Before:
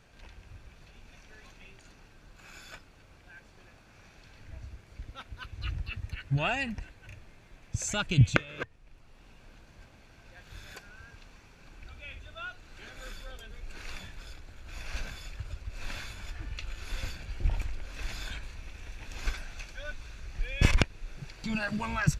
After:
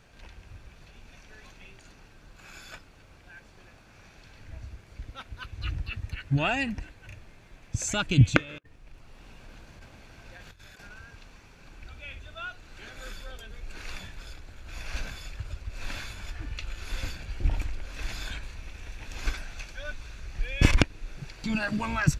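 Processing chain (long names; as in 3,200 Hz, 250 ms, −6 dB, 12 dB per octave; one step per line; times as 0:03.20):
dynamic equaliser 290 Hz, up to +7 dB, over −56 dBFS, Q 3.8
0:08.58–0:10.99: compressor whose output falls as the input rises −50 dBFS, ratio −0.5
level +2.5 dB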